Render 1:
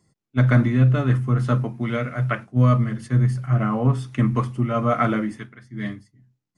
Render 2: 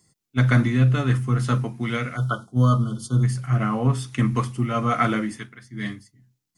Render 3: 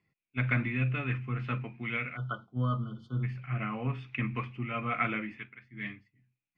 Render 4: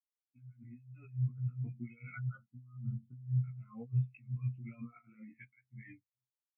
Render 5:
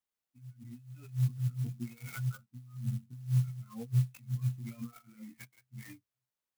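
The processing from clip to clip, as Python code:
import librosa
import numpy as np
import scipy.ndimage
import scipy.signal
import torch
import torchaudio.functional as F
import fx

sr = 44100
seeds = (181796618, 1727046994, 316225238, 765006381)

y1 = fx.notch(x, sr, hz=600.0, q=12.0)
y1 = fx.spec_erase(y1, sr, start_s=2.16, length_s=1.07, low_hz=1500.0, high_hz=3000.0)
y1 = fx.high_shelf(y1, sr, hz=2900.0, db=12.0)
y1 = y1 * 10.0 ** (-1.5 / 20.0)
y2 = fx.ladder_lowpass(y1, sr, hz=2600.0, resonance_pct=80)
y3 = fx.over_compress(y2, sr, threshold_db=-40.0, ratio=-1.0)
y3 = fx.doubler(y3, sr, ms=17.0, db=-2.0)
y3 = fx.spectral_expand(y3, sr, expansion=2.5)
y3 = y3 * 10.0 ** (-2.0 / 20.0)
y4 = fx.clock_jitter(y3, sr, seeds[0], jitter_ms=0.065)
y4 = y4 * 10.0 ** (4.0 / 20.0)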